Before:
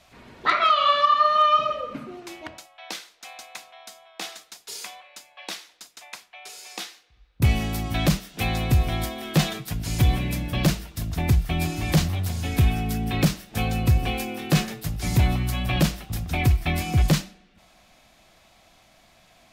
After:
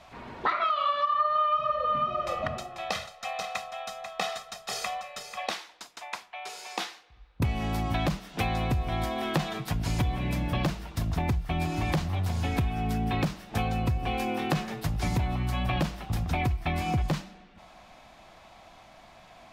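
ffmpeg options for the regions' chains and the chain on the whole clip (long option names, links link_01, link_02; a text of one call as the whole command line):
ffmpeg -i in.wav -filter_complex "[0:a]asettb=1/sr,asplit=3[link_01][link_02][link_03];[link_01]atrim=end=1.144[link_04];[link_02]atrim=start=1.14:end=5.5,asetpts=PTS-STARTPTS,afade=type=in:duration=0.004:curve=qsin,afade=type=out:start_time=4.356:duration=0.004:curve=qsin,bass=frequency=250:gain=7,treble=frequency=4000:gain=-1,aecho=1:1:1.6:0.86,atrim=end_sample=192276,aecho=1:1:491:0.335,atrim=end_sample=192276[link_05];[link_03]atrim=start=5.496[link_06];[link_04][link_05]acrossfade=duration=0.004:curve1=hsin:curve2=qsin[link_07];[link_07][link_06]acrossfade=duration=0.004:curve1=qsin:curve2=hsin,lowpass=frequency=3500:poles=1,equalizer=frequency=920:width_type=o:width=1:gain=6.5,acompressor=threshold=-28dB:ratio=6,volume=3dB" out.wav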